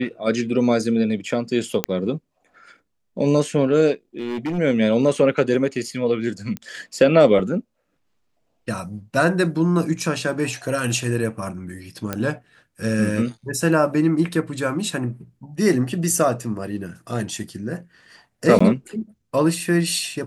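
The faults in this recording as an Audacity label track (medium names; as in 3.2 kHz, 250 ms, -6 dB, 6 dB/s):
1.840000	1.840000	pop -3 dBFS
4.170000	4.590000	clipped -21.5 dBFS
6.570000	6.570000	pop -15 dBFS
12.130000	12.130000	pop -9 dBFS
18.590000	18.610000	dropout 15 ms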